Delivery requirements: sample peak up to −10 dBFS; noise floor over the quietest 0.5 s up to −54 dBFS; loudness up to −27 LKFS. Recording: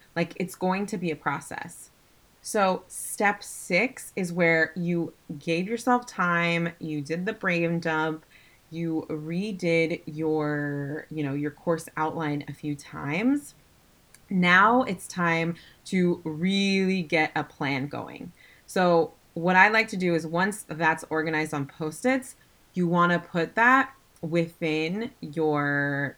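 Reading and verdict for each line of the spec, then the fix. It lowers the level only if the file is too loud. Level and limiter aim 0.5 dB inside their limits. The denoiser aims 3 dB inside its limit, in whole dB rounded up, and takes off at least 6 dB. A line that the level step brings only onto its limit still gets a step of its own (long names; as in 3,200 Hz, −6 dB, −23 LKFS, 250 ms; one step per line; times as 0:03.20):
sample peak −4.0 dBFS: out of spec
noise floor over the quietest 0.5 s −60 dBFS: in spec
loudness −26.0 LKFS: out of spec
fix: level −1.5 dB
brickwall limiter −10.5 dBFS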